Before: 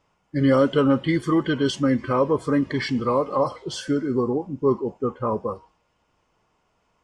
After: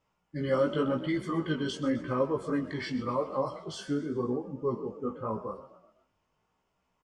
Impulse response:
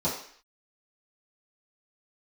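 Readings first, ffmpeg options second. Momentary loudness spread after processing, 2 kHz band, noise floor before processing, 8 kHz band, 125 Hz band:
8 LU, −8.5 dB, −70 dBFS, −9.5 dB, −9.5 dB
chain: -filter_complex "[0:a]asplit=5[link_01][link_02][link_03][link_04][link_05];[link_02]adelay=127,afreqshift=40,volume=-15dB[link_06];[link_03]adelay=254,afreqshift=80,volume=-21.4dB[link_07];[link_04]adelay=381,afreqshift=120,volume=-27.8dB[link_08];[link_05]adelay=508,afreqshift=160,volume=-34.1dB[link_09];[link_01][link_06][link_07][link_08][link_09]amix=inputs=5:normalize=0,flanger=delay=15:depth=5.4:speed=0.89,asplit=2[link_10][link_11];[1:a]atrim=start_sample=2205[link_12];[link_11][link_12]afir=irnorm=-1:irlink=0,volume=-27dB[link_13];[link_10][link_13]amix=inputs=2:normalize=0,volume=-6dB"

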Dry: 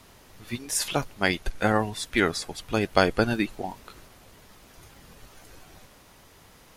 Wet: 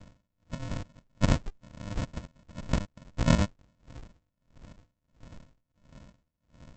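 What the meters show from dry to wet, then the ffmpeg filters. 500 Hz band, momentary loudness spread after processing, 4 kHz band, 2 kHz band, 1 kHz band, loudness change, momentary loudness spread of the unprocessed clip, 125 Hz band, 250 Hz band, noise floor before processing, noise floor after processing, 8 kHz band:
−11.5 dB, 22 LU, −10.0 dB, −13.5 dB, −11.0 dB, −5.0 dB, 15 LU, +2.5 dB, −4.0 dB, −54 dBFS, −81 dBFS, −12.0 dB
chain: -af "aresample=16000,acrusher=samples=40:mix=1:aa=0.000001,aresample=44100,aeval=exprs='val(0)*pow(10,-36*(0.5-0.5*cos(2*PI*1.5*n/s))/20)':channel_layout=same,volume=6dB"

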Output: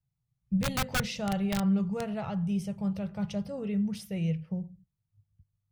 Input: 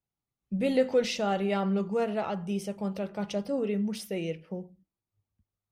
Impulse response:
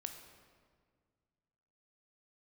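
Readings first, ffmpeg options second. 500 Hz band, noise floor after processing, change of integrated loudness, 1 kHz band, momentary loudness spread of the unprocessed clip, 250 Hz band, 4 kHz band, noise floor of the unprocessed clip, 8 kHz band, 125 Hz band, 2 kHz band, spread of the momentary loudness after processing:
−9.5 dB, −83 dBFS, −1.0 dB, −3.5 dB, 9 LU, +1.5 dB, 0.0 dB, below −85 dBFS, +3.0 dB, +5.5 dB, +1.5 dB, 6 LU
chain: -af "aeval=exprs='(mod(8.91*val(0)+1,2)-1)/8.91':channel_layout=same,lowshelf=frequency=200:width_type=q:width=3:gain=13,volume=-4.5dB"

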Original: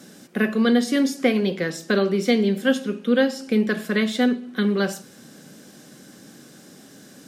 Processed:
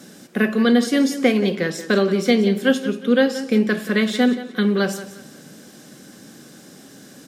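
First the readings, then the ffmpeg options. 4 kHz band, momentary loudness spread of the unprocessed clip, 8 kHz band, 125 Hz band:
+2.5 dB, 6 LU, +2.5 dB, +2.5 dB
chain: -af "aecho=1:1:178|356|534:0.2|0.0638|0.0204,volume=2.5dB"

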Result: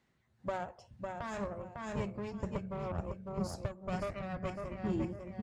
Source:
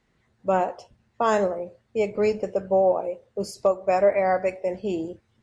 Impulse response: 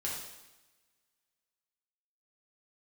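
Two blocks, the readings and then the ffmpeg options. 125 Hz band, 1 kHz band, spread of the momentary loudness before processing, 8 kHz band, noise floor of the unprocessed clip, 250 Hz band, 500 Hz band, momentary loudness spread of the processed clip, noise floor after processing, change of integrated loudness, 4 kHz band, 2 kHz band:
0.0 dB, −16.0 dB, 12 LU, can't be measured, −69 dBFS, −7.0 dB, −18.5 dB, 5 LU, −75 dBFS, −15.0 dB, −10.0 dB, −12.5 dB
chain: -af "aecho=1:1:552|1104|1656:0.422|0.114|0.0307,aeval=exprs='0.376*(cos(1*acos(clip(val(0)/0.376,-1,1)))-cos(1*PI/2))+0.0668*(cos(4*acos(clip(val(0)/0.376,-1,1)))-cos(4*PI/2))+0.0133*(cos(8*acos(clip(val(0)/0.376,-1,1)))-cos(8*PI/2))':channel_layout=same,acompressor=threshold=-30dB:ratio=2.5,bandreject=frequency=460:width=12,aeval=exprs='clip(val(0),-1,0.0251)':channel_layout=same,highpass=73,asubboost=boost=11.5:cutoff=170,tremolo=f=2:d=0.46,volume=-4.5dB"

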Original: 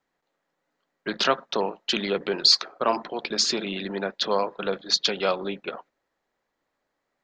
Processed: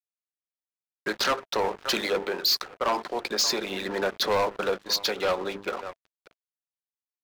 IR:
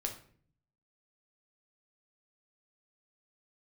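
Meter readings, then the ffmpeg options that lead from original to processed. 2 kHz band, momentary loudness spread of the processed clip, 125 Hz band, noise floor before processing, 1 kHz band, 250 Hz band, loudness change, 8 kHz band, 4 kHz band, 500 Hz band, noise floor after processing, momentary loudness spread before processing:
+1.0 dB, 9 LU, −4.0 dB, −80 dBFS, 0.0 dB, −3.5 dB, −2.5 dB, 0.0 dB, −4.0 dB, −0.5 dB, below −85 dBFS, 13 LU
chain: -filter_complex "[0:a]equalizer=frequency=3000:width_type=o:width=0.6:gain=-9,bandreject=frequency=50:width_type=h:width=6,bandreject=frequency=100:width_type=h:width=6,bandreject=frequency=150:width_type=h:width=6,bandreject=frequency=200:width_type=h:width=6,bandreject=frequency=250:width_type=h:width=6,bandreject=frequency=300:width_type=h:width=6,bandreject=frequency=350:width_type=h:width=6,bandreject=frequency=400:width_type=h:width=6,bandreject=frequency=450:width_type=h:width=6,acrossover=split=370|2300[link_01][link_02][link_03];[link_01]acompressor=threshold=-44dB:ratio=6[link_04];[link_02]aecho=1:1:580:0.141[link_05];[link_04][link_05][link_03]amix=inputs=3:normalize=0,aeval=exprs='sgn(val(0))*max(abs(val(0))-0.00501,0)':channel_layout=same,bandreject=frequency=660:width=12,dynaudnorm=framelen=230:gausssize=3:maxgain=13.5dB,asoftclip=type=tanh:threshold=-17.5dB,volume=-2dB"

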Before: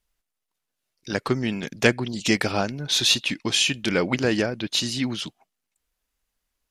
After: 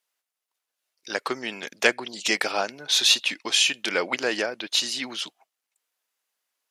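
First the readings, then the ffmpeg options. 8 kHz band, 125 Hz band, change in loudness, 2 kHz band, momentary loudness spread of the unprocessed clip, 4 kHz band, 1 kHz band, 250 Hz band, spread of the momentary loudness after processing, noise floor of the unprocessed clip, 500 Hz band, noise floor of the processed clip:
+1.0 dB, below −20 dB, −0.5 dB, +1.0 dB, 9 LU, +1.0 dB, +0.5 dB, −10.5 dB, 12 LU, −82 dBFS, −3.0 dB, −85 dBFS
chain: -af "highpass=520,volume=1dB"

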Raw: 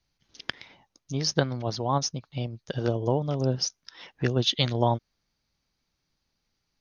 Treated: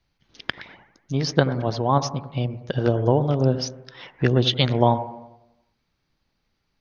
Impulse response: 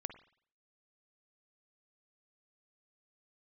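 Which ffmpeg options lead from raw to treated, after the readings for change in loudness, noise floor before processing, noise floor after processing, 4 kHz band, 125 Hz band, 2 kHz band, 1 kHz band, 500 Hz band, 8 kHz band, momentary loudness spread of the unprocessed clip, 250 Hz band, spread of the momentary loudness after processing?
+5.5 dB, −79 dBFS, −74 dBFS, +2.0 dB, +6.0 dB, +5.5 dB, +6.0 dB, +6.0 dB, can't be measured, 13 LU, +6.5 dB, 14 LU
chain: -filter_complex "[0:a]asplit=2[link_01][link_02];[link_02]lowpass=4300[link_03];[1:a]atrim=start_sample=2205,asetrate=25137,aresample=44100[link_04];[link_03][link_04]afir=irnorm=-1:irlink=0,volume=3dB[link_05];[link_01][link_05]amix=inputs=2:normalize=0,volume=-1.5dB"

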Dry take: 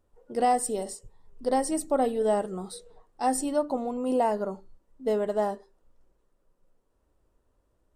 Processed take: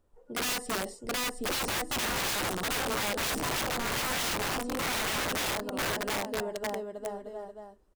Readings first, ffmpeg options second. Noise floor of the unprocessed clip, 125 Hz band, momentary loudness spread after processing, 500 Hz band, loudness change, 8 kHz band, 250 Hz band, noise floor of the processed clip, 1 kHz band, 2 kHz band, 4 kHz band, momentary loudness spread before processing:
−72 dBFS, can't be measured, 10 LU, −7.0 dB, −3.0 dB, +4.0 dB, −5.5 dB, −58 dBFS, −4.5 dB, +13.5 dB, +15.5 dB, 14 LU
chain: -filter_complex "[0:a]acrossover=split=4500[link_01][link_02];[link_02]acompressor=threshold=-48dB:ratio=4:attack=1:release=60[link_03];[link_01][link_03]amix=inputs=2:normalize=0,aecho=1:1:720|1260|1665|1969|2197:0.631|0.398|0.251|0.158|0.1,aeval=exprs='(mod(20*val(0)+1,2)-1)/20':channel_layout=same"

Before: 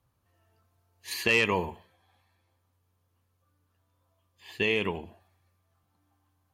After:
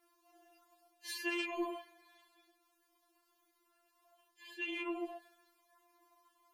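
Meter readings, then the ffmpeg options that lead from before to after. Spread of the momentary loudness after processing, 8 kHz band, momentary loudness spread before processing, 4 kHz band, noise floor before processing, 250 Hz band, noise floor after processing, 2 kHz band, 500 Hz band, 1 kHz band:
17 LU, −9.5 dB, 15 LU, −11.0 dB, −74 dBFS, −5.5 dB, −77 dBFS, −12.5 dB, −13.0 dB, −10.5 dB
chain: -af "highpass=100,areverse,acompressor=threshold=-42dB:ratio=5,areverse,tremolo=f=30:d=0.667,afftfilt=real='re*4*eq(mod(b,16),0)':imag='im*4*eq(mod(b,16),0)':win_size=2048:overlap=0.75,volume=11dB"

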